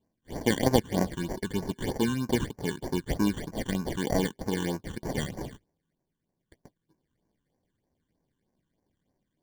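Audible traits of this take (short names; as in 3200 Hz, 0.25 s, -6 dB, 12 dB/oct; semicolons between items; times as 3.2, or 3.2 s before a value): aliases and images of a low sample rate 1300 Hz, jitter 0%; phasing stages 8, 3.2 Hz, lowest notch 630–3400 Hz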